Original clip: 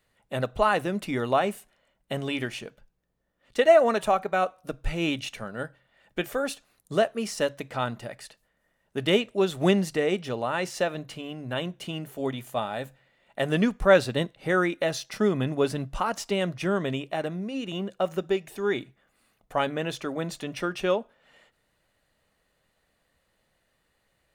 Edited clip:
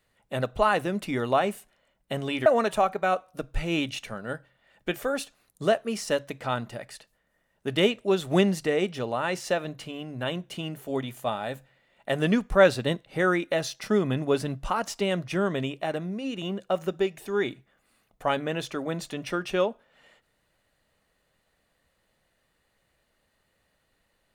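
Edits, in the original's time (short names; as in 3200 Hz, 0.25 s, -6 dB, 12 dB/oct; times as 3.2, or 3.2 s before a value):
2.46–3.76 cut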